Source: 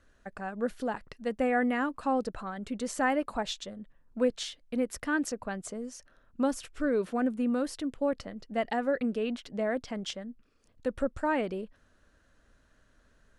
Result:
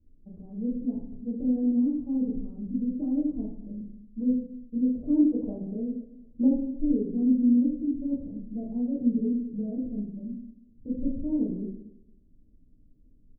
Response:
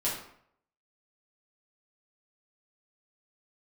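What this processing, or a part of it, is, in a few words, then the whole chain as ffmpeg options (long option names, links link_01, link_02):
next room: -filter_complex "[0:a]bandreject=frequency=50:width_type=h:width=6,bandreject=frequency=100:width_type=h:width=6,bandreject=frequency=150:width_type=h:width=6,bandreject=frequency=200:width_type=h:width=6,asplit=3[link_01][link_02][link_03];[link_01]afade=type=out:start_time=4.88:duration=0.02[link_04];[link_02]equalizer=frequency=670:width_type=o:width=1.4:gain=13.5,afade=type=in:start_time=4.88:duration=0.02,afade=type=out:start_time=6.47:duration=0.02[link_05];[link_03]afade=type=in:start_time=6.47:duration=0.02[link_06];[link_04][link_05][link_06]amix=inputs=3:normalize=0,lowpass=frequency=300:width=0.5412,lowpass=frequency=300:width=1.3066,asplit=2[link_07][link_08];[link_08]adelay=230,lowpass=frequency=810:poles=1,volume=-19.5dB,asplit=2[link_09][link_10];[link_10]adelay=230,lowpass=frequency=810:poles=1,volume=0.28[link_11];[link_07][link_09][link_11]amix=inputs=3:normalize=0[link_12];[1:a]atrim=start_sample=2205[link_13];[link_12][link_13]afir=irnorm=-1:irlink=0"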